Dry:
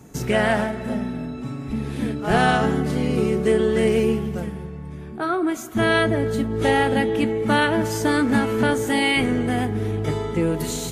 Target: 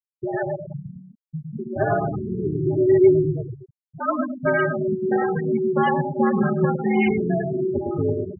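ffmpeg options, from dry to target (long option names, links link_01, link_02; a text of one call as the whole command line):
ffmpeg -i in.wav -filter_complex "[0:a]afftdn=noise_reduction=28:noise_floor=-31,highpass=230,lowpass=2200,aecho=1:1:4.4:0.57,dynaudnorm=framelen=400:gausssize=5:maxgain=13.5dB,atempo=1.3,flanger=delay=5.1:depth=2:regen=-5:speed=1.5:shape=triangular,aeval=exprs='sgn(val(0))*max(abs(val(0))-0.00708,0)':channel_layout=same,acrusher=bits=11:mix=0:aa=0.000001,afreqshift=-63,asplit=2[link_01][link_02];[link_02]adelay=107,lowpass=frequency=1200:poles=1,volume=-4.5dB,asplit=2[link_03][link_04];[link_04]adelay=107,lowpass=frequency=1200:poles=1,volume=0.37,asplit=2[link_05][link_06];[link_06]adelay=107,lowpass=frequency=1200:poles=1,volume=0.37,asplit=2[link_07][link_08];[link_08]adelay=107,lowpass=frequency=1200:poles=1,volume=0.37,asplit=2[link_09][link_10];[link_10]adelay=107,lowpass=frequency=1200:poles=1,volume=0.37[link_11];[link_03][link_05][link_07][link_09][link_11]amix=inputs=5:normalize=0[link_12];[link_01][link_12]amix=inputs=2:normalize=0,afftfilt=real='re*gte(hypot(re,im),0.2)':imag='im*gte(hypot(re,im),0.2)':win_size=1024:overlap=0.75,volume=-3dB" out.wav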